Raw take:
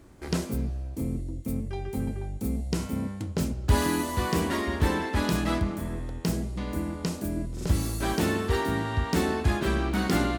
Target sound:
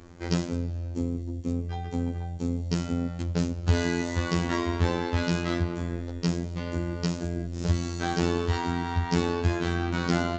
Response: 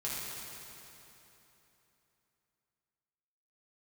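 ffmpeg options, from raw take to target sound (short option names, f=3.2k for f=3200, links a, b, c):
-filter_complex "[0:a]asplit=2[a][b];[b]acompressor=threshold=-33dB:ratio=8,volume=3dB[c];[a][c]amix=inputs=2:normalize=0,afftfilt=real='hypot(re,im)*cos(PI*b)':imag='0':win_size=2048:overlap=0.75,aresample=16000,aresample=44100"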